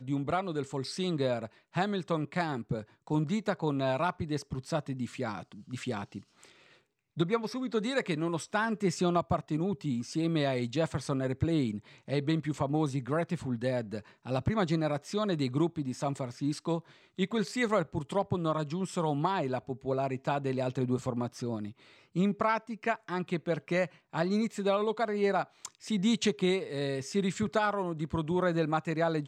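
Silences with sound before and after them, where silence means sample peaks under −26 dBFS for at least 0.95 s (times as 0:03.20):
0:06.02–0:07.20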